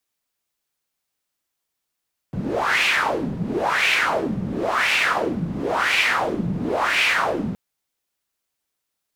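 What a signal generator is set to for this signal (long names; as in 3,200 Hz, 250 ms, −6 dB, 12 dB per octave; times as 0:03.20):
wind from filtered noise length 5.22 s, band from 170 Hz, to 2,500 Hz, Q 3.9, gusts 5, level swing 7 dB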